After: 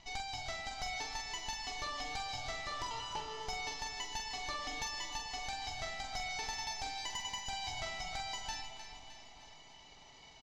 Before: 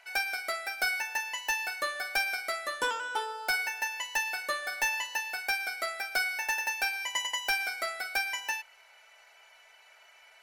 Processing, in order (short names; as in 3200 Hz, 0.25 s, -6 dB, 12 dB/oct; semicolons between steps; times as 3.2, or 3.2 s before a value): minimum comb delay 0.99 ms; steep low-pass 6700 Hz 48 dB/oct; bell 1700 Hz -12 dB 1.6 oct; compressor 5:1, threshold -43 dBFS, peak gain reduction 11.5 dB; in parallel at -9.5 dB: sine folder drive 9 dB, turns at -27 dBFS; on the sum: doubler 46 ms -6.5 dB; on a send: split-band echo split 830 Hz, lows 0.441 s, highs 0.307 s, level -10.5 dB; on the sum: spring tank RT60 2.7 s, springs 41 ms, chirp 35 ms, DRR 9.5 dB; gain -2.5 dB